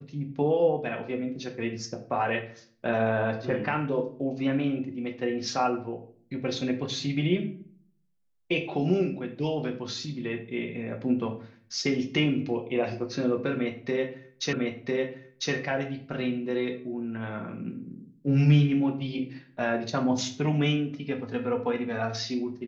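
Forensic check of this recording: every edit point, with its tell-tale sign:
14.53 s: repeat of the last 1 s

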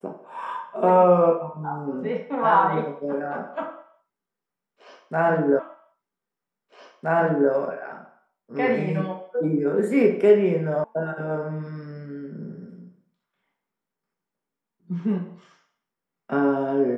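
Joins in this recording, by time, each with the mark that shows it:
5.59 s: repeat of the last 1.92 s
10.84 s: sound stops dead

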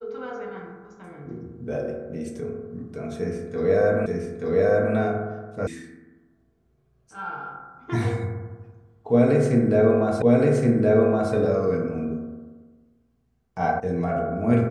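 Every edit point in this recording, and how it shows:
4.06 s: repeat of the last 0.88 s
5.67 s: sound stops dead
10.22 s: repeat of the last 1.12 s
13.80 s: sound stops dead

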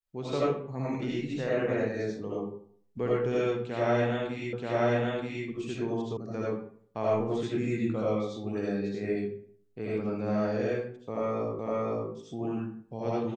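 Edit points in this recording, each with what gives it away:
4.53 s: repeat of the last 0.93 s
6.17 s: sound stops dead
11.59 s: repeat of the last 0.51 s

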